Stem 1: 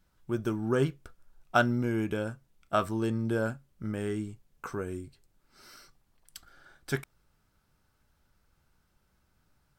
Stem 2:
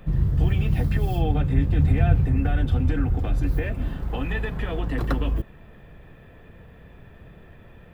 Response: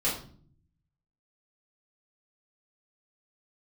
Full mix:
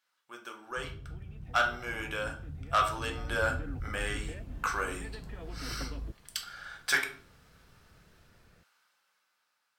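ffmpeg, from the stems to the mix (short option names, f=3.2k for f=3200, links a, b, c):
-filter_complex "[0:a]highpass=980,highshelf=f=2.1k:g=9,dynaudnorm=f=300:g=11:m=15dB,volume=-5.5dB,asplit=2[a][b];[b]volume=-9.5dB[c];[1:a]adelay=700,volume=-15dB,afade=t=in:st=2.86:d=0.57:silence=0.375837[d];[2:a]atrim=start_sample=2205[e];[c][e]afir=irnorm=-1:irlink=0[f];[a][d][f]amix=inputs=3:normalize=0,lowpass=f=2.7k:p=1,asoftclip=type=tanh:threshold=-18dB"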